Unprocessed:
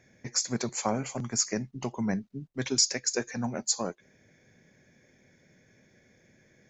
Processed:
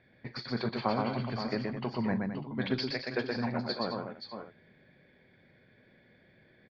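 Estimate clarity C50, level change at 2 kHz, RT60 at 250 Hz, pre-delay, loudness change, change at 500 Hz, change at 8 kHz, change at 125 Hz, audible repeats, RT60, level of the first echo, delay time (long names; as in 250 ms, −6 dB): no reverb audible, +1.0 dB, no reverb audible, no reverb audible, −4.0 dB, +0.5 dB, below −35 dB, 0.0 dB, 5, no reverb audible, −14.0 dB, 41 ms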